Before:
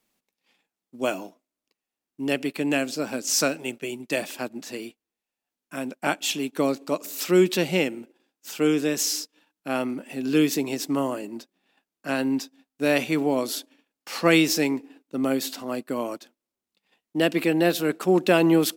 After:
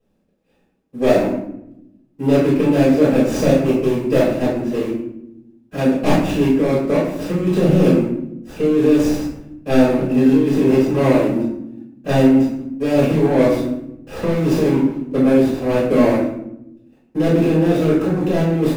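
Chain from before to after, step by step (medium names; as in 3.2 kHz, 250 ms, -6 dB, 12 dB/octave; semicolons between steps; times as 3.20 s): median filter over 41 samples; compressor with a negative ratio -27 dBFS, ratio -1; reverberation RT60 0.80 s, pre-delay 4 ms, DRR -9.5 dB; trim -1.5 dB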